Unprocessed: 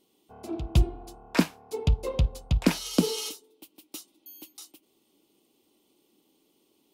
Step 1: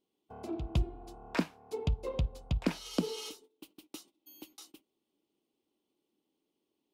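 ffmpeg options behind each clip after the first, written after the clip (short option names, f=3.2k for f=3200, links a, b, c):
-af "acompressor=threshold=-45dB:ratio=1.5,aemphasis=mode=reproduction:type=cd,agate=range=-15dB:threshold=-58dB:ratio=16:detection=peak,volume=1dB"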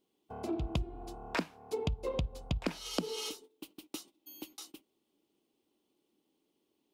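-af "acompressor=threshold=-34dB:ratio=6,volume=4dB"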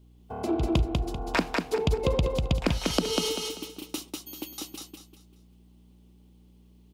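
-af "aeval=exprs='val(0)+0.000794*(sin(2*PI*60*n/s)+sin(2*PI*2*60*n/s)/2+sin(2*PI*3*60*n/s)/3+sin(2*PI*4*60*n/s)/4+sin(2*PI*5*60*n/s)/5)':c=same,aecho=1:1:195|390|585|780:0.708|0.227|0.0725|0.0232,volume=8dB"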